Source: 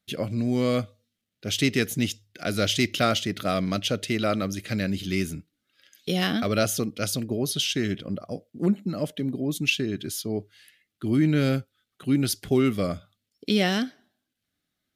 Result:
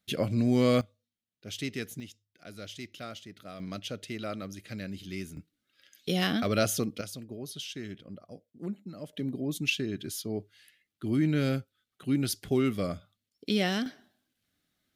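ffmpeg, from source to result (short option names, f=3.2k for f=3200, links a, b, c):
-af "asetnsamples=n=441:p=0,asendcmd='0.81 volume volume -12dB;2 volume volume -19dB;3.6 volume volume -11.5dB;5.37 volume volume -3dB;7.01 volume volume -13.5dB;9.13 volume volume -5dB;13.86 volume volume 2.5dB',volume=0dB"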